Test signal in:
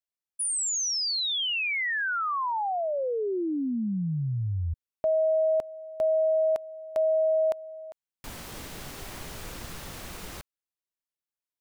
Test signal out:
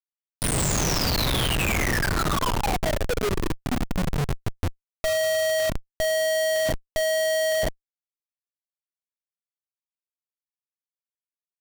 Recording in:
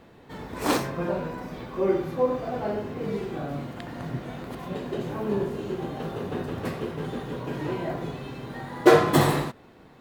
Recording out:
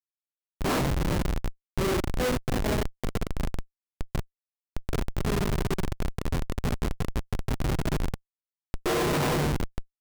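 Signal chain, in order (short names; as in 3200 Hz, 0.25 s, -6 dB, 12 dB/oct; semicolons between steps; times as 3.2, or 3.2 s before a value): two-slope reverb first 0.38 s, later 4.6 s, from -17 dB, DRR -0.5 dB; Schmitt trigger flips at -22 dBFS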